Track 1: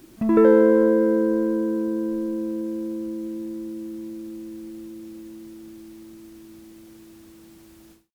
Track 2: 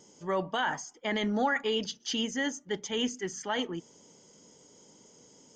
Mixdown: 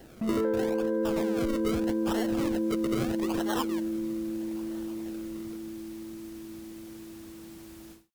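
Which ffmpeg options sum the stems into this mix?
-filter_complex "[0:a]dynaudnorm=f=370:g=3:m=3.16,volume=0.422[s0];[1:a]highpass=f=220:w=0.5412,highpass=f=220:w=1.3066,aexciter=amount=2.7:drive=3.4:freq=2400,acrusher=samples=36:mix=1:aa=0.000001:lfo=1:lforange=36:lforate=0.79,volume=0.944[s1];[s0][s1]amix=inputs=2:normalize=0,acompressor=threshold=0.0631:ratio=10"

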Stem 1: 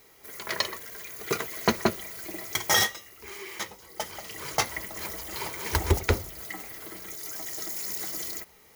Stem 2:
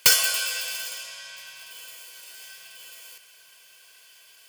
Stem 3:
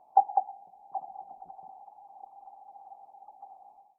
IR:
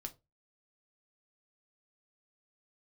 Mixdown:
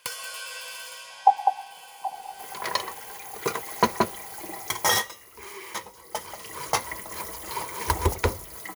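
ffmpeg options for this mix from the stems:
-filter_complex "[0:a]adelay=2150,volume=0.841[s0];[1:a]highshelf=f=5300:g=-9,acompressor=threshold=0.0251:ratio=5,volume=0.75[s1];[2:a]adelay=1100,volume=1.19[s2];[s0][s1][s2]amix=inputs=3:normalize=0,equalizer=f=500:t=o:w=0.33:g=5,equalizer=f=1000:t=o:w=0.33:g=11,equalizer=f=10000:t=o:w=0.33:g=7"

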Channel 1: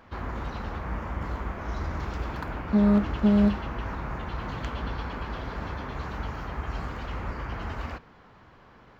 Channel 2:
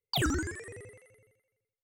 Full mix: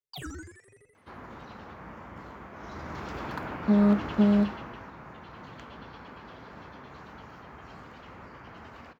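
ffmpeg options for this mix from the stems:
-filter_complex "[0:a]highpass=130,adelay=950,afade=t=in:st=2.51:d=0.7:silence=0.398107,afade=t=out:st=4.23:d=0.66:silence=0.334965[s0];[1:a]asplit=2[s1][s2];[s2]adelay=5.2,afreqshift=1.5[s3];[s1][s3]amix=inputs=2:normalize=1,volume=0.376[s4];[s0][s4]amix=inputs=2:normalize=0"

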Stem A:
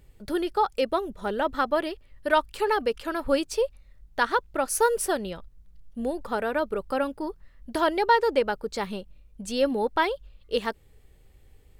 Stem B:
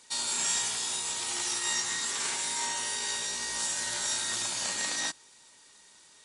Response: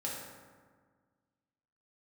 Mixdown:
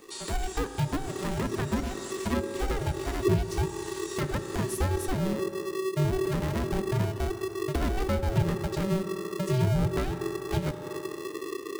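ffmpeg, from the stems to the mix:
-filter_complex "[0:a]asubboost=boost=6.5:cutoff=200,aeval=exprs='val(0)*sgn(sin(2*PI*380*n/s))':c=same,volume=1.06,asplit=2[s0][s1];[s1]volume=0.299[s2];[1:a]volume=0.447[s3];[2:a]atrim=start_sample=2205[s4];[s2][s4]afir=irnorm=-1:irlink=0[s5];[s0][s3][s5]amix=inputs=3:normalize=0,acrossover=split=360[s6][s7];[s7]acompressor=threshold=0.0178:ratio=6[s8];[s6][s8]amix=inputs=2:normalize=0"

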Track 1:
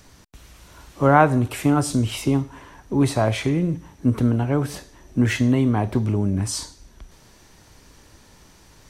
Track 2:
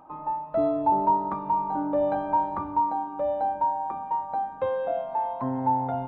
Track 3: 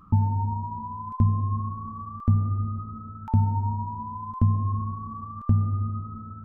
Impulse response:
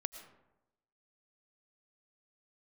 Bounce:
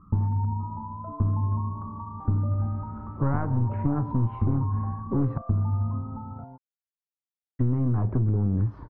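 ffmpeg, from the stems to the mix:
-filter_complex "[0:a]equalizer=f=120:t=o:w=0.35:g=8,adelay=2200,volume=1.12,asplit=3[s0][s1][s2];[s0]atrim=end=5.38,asetpts=PTS-STARTPTS,afade=t=out:st=5.376:d=0.004:c=hsin[s3];[s1]atrim=start=5.38:end=7.59,asetpts=PTS-STARTPTS,volume=0[s4];[s2]atrim=start=7.59,asetpts=PTS-STARTPTS,afade=t=in:d=0.004:c=hsin[s5];[s3][s4][s5]concat=n=3:v=0:a=1[s6];[1:a]acompressor=threshold=0.0398:ratio=6,adelay=500,volume=0.422[s7];[2:a]volume=1.19[s8];[s6][s8]amix=inputs=2:normalize=0,aeval=exprs='clip(val(0),-1,0.112)':c=same,acompressor=threshold=0.112:ratio=6,volume=1[s9];[s7][s9]amix=inputs=2:normalize=0,lowpass=f=1200:w=0.5412,lowpass=f=1200:w=1.3066,equalizer=f=680:w=1.1:g=-8"

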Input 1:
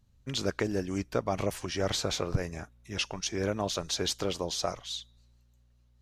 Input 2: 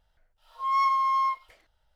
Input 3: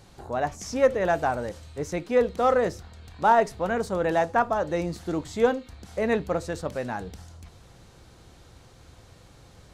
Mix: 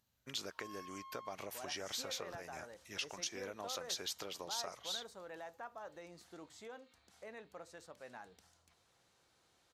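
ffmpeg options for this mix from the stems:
-filter_complex "[0:a]equalizer=f=13000:w=3.5:g=12.5,acompressor=threshold=0.02:ratio=6,volume=0.75[s0];[1:a]acompressor=threshold=0.0178:ratio=3,asoftclip=type=tanh:threshold=0.0224,volume=0.188[s1];[2:a]alimiter=limit=0.0891:level=0:latency=1:release=214,adelay=1250,volume=0.178[s2];[s0][s1][s2]amix=inputs=3:normalize=0,highpass=f=160:p=1,lowshelf=f=480:g=-11.5"

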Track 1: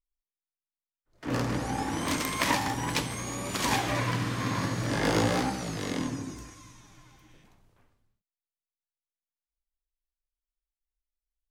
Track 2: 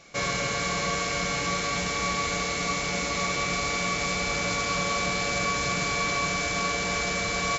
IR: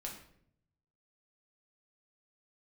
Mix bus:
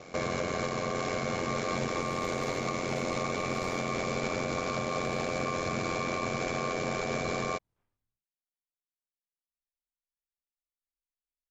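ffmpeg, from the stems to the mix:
-filter_complex "[0:a]flanger=delay=16.5:depth=7:speed=0.85,volume=0.211[s0];[1:a]equalizer=f=350:w=0.33:g=14,alimiter=limit=0.211:level=0:latency=1:release=22,aeval=exprs='val(0)*sin(2*PI*44*n/s)':c=same,volume=0.944[s1];[s0][s1]amix=inputs=2:normalize=0,alimiter=limit=0.0841:level=0:latency=1:release=224"

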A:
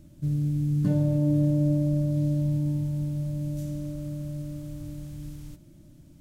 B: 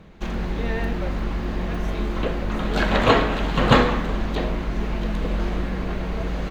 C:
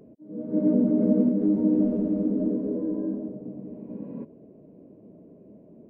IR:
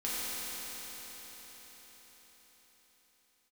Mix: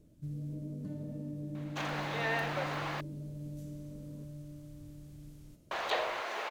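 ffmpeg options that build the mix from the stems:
-filter_complex "[0:a]volume=0.224,asplit=2[s0][s1];[s1]volume=0.211[s2];[1:a]highpass=f=570:w=0.5412,highpass=f=570:w=1.3066,adelay=1550,volume=0.944,asplit=3[s3][s4][s5];[s3]atrim=end=3.01,asetpts=PTS-STARTPTS,afade=t=out:st=3.006:d=0.004:c=hsin[s6];[s4]atrim=start=3.01:end=5.71,asetpts=PTS-STARTPTS,volume=0[s7];[s5]atrim=start=5.71,asetpts=PTS-STARTPTS,afade=t=in:d=0.004:c=hsin[s8];[s6][s7][s8]concat=n=3:v=0:a=1[s9];[2:a]volume=0.126[s10];[s0][s10]amix=inputs=2:normalize=0,alimiter=level_in=3.55:limit=0.0631:level=0:latency=1:release=478,volume=0.282,volume=1[s11];[3:a]atrim=start_sample=2205[s12];[s2][s12]afir=irnorm=-1:irlink=0[s13];[s9][s11][s13]amix=inputs=3:normalize=0"

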